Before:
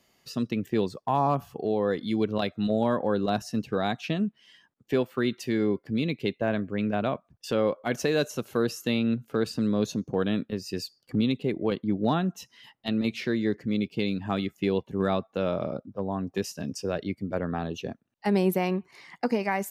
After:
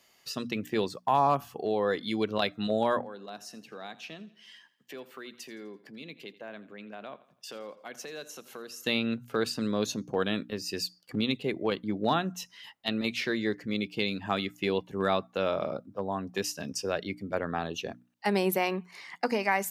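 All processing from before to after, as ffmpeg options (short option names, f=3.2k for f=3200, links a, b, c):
-filter_complex "[0:a]asettb=1/sr,asplit=3[a][b][c];[a]atrim=end=3.014[d];[b]atrim=start=3.01:end=8.83,asetpts=PTS-STARTPTS,afade=t=in:d=0.004:c=qsin,afade=t=out:st=5.816:d=0.004:c=qsin,highpass=f=150:w=0.5412,highpass=f=150:w=1.3066,acompressor=threshold=-50dB:ratio=2:attack=3.2:release=140:knee=1:detection=peak,aecho=1:1:84|168|252|336:0.126|0.0554|0.0244|0.0107,atrim=end_sample=256662[e];[c]atrim=start=8.826[f];[d][e]acrossfade=d=0.004:c1=hsin:c2=qsin[g];[g][f]acrossfade=d=0.004:c1=qsin:c2=hsin,lowshelf=f=480:g=-11,bandreject=f=60:t=h:w=6,bandreject=f=120:t=h:w=6,bandreject=f=180:t=h:w=6,bandreject=f=240:t=h:w=6,bandreject=f=300:t=h:w=6,volume=4dB"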